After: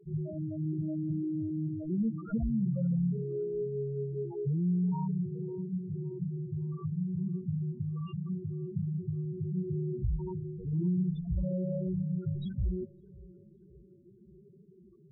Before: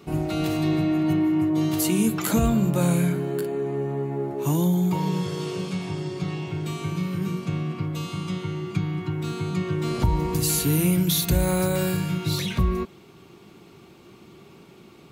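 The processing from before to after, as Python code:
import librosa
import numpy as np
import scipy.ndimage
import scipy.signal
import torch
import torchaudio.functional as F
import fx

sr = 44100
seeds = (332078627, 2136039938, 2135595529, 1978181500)

y = fx.tracing_dist(x, sr, depth_ms=0.35)
y = fx.peak_eq(y, sr, hz=290.0, db=-13.0, octaves=0.22)
y = 10.0 ** (-19.0 / 20.0) * np.tanh(y / 10.0 ** (-19.0 / 20.0))
y = fx.spec_topn(y, sr, count=4)
y = fx.peak_eq(y, sr, hz=130.0, db=-6.5, octaves=0.58, at=(10.16, 10.73))
y = fx.echo_wet_lowpass(y, sr, ms=557, feedback_pct=45, hz=1000.0, wet_db=-21.5)
y = y * 10.0 ** (-4.0 / 20.0)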